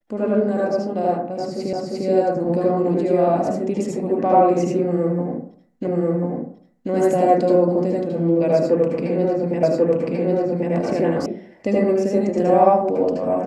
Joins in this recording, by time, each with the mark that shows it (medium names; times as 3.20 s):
1.73 s: repeat of the last 0.35 s
5.87 s: repeat of the last 1.04 s
9.63 s: repeat of the last 1.09 s
11.26 s: sound stops dead